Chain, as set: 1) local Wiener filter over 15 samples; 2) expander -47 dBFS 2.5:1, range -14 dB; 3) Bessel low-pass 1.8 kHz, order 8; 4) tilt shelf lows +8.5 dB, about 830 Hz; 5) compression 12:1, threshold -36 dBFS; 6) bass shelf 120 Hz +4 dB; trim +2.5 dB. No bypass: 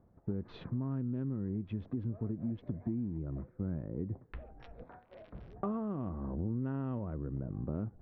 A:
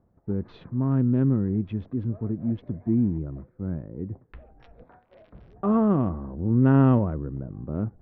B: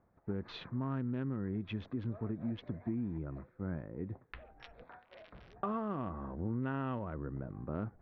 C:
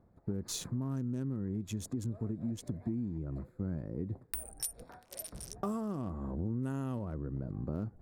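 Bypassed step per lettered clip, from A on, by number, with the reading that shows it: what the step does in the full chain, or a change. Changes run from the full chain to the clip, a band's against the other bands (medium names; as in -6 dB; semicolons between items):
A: 5, mean gain reduction 7.5 dB; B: 4, 2 kHz band +9.5 dB; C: 3, 2 kHz band +2.5 dB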